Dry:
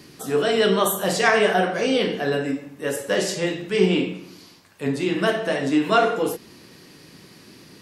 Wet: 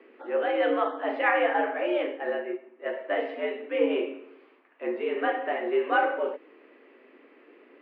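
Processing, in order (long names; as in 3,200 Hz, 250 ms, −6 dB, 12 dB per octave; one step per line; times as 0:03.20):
single-sideband voice off tune +92 Hz 180–2,500 Hz
0:01.97–0:02.86: expander for the loud parts 1.5 to 1, over −32 dBFS
level −5.5 dB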